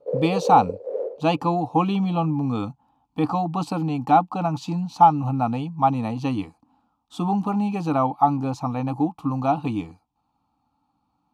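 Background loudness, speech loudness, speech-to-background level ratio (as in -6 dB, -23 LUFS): -28.5 LUFS, -23.0 LUFS, 5.5 dB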